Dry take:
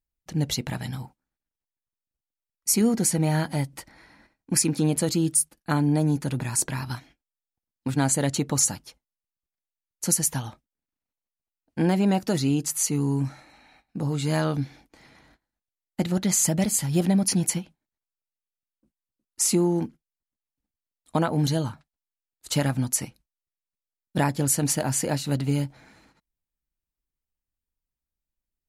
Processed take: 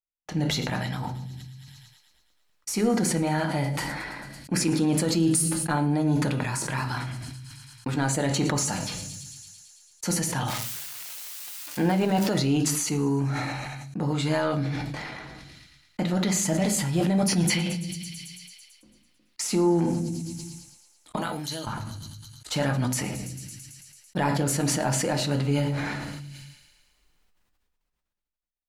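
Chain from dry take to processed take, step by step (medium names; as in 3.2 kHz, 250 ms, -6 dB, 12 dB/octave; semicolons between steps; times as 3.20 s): 10.48–12.27 s: zero-crossing glitches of -24.5 dBFS; 21.16–21.67 s: pre-emphasis filter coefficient 0.9; gate -53 dBFS, range -23 dB; 17.50–19.42 s: high-order bell 3.1 kHz +8.5 dB; in parallel at -3 dB: compression, threshold -33 dBFS, peak gain reduction 15 dB; on the sum: peak limiter -14 dBFS, peak gain reduction 7 dB; overdrive pedal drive 6 dB, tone 2.5 kHz, clips at -14 dBFS; feedback echo behind a high-pass 111 ms, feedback 60%, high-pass 4.2 kHz, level -17 dB; on a send at -5 dB: reverberation RT60 0.50 s, pre-delay 6 ms; on the sum: decay stretcher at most 24 dB/s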